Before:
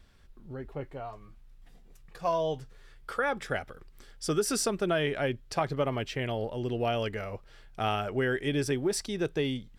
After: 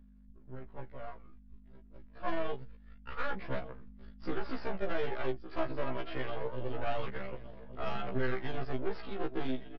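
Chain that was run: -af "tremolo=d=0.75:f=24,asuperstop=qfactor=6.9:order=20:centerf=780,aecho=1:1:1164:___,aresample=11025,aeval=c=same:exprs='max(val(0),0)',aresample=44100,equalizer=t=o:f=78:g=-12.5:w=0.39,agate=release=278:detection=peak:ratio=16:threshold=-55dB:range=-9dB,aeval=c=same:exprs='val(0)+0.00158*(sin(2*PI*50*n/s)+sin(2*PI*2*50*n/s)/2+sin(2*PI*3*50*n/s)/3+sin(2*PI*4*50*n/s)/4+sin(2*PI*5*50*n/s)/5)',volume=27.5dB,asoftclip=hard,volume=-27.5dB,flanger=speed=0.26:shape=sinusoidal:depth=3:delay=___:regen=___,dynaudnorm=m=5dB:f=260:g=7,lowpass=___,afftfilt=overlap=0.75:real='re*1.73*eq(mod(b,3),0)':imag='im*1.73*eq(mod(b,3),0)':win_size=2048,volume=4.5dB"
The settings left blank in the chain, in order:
0.141, 0.1, 52, 2600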